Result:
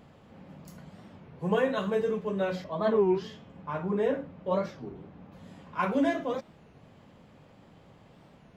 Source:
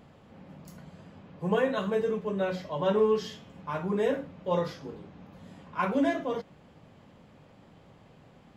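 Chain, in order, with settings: 2.64–5.32 high shelf 3700 Hz -12 dB; record warp 33 1/3 rpm, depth 250 cents

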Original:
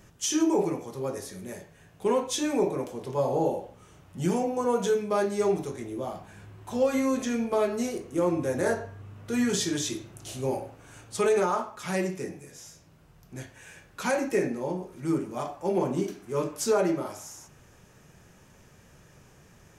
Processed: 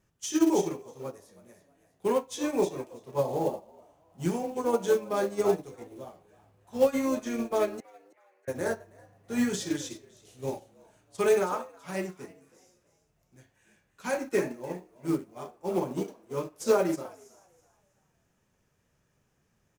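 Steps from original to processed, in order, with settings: in parallel at -2 dB: limiter -22 dBFS, peak gain reduction 7.5 dB; on the sum: wow and flutter 21 cents; companded quantiser 6-bit; 7.8–8.48 Butterworth band-pass 1800 Hz, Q 2.5; on a send: frequency-shifting echo 0.324 s, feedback 35%, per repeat +84 Hz, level -11 dB; on the sum: upward expander 2.5:1, over -32 dBFS

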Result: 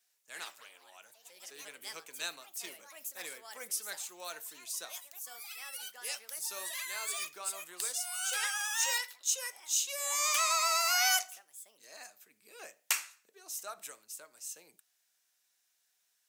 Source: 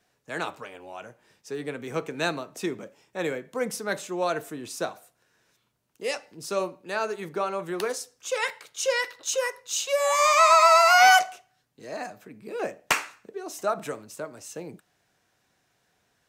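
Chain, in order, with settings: differentiator; echoes that change speed 0.1 s, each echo +4 st, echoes 3, each echo -6 dB

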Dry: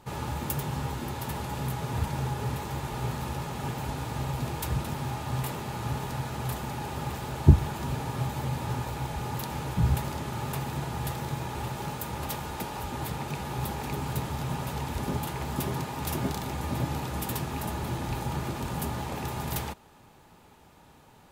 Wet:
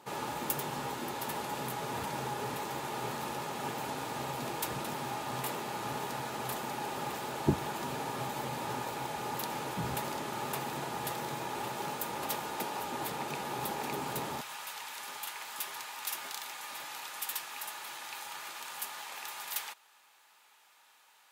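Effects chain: HPF 290 Hz 12 dB/oct, from 14.41 s 1400 Hz

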